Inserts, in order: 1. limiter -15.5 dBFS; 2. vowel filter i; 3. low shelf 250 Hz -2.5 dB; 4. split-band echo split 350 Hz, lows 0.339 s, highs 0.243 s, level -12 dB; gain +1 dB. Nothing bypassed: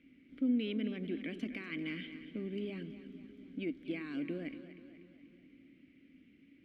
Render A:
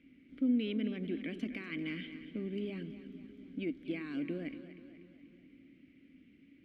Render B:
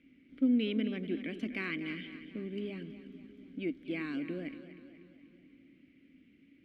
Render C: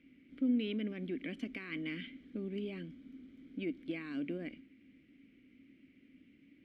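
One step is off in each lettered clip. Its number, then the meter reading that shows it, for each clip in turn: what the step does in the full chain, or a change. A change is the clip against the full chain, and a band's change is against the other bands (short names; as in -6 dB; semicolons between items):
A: 3, loudness change +1.0 LU; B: 1, 1 kHz band +3.0 dB; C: 4, echo-to-direct -10.5 dB to none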